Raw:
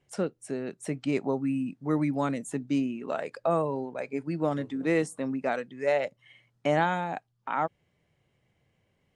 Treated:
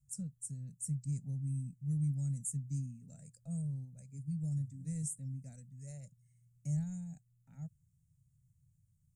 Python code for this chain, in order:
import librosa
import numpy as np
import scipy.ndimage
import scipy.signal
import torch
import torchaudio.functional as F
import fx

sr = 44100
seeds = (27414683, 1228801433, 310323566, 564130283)

y = scipy.signal.sosfilt(scipy.signal.ellip(3, 1.0, 40, [140.0, 7500.0], 'bandstop', fs=sr, output='sos'), x)
y = F.gain(torch.from_numpy(y), 4.0).numpy()